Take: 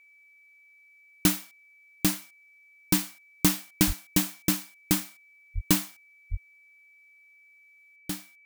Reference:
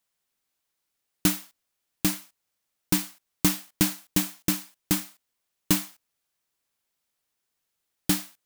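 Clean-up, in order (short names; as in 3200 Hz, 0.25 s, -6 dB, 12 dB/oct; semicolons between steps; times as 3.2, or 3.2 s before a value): notch 2300 Hz, Q 30; 3.86–3.98 HPF 140 Hz 24 dB/oct; 5.54–5.66 HPF 140 Hz 24 dB/oct; 6.3–6.42 HPF 140 Hz 24 dB/oct; 7.96 gain correction +10 dB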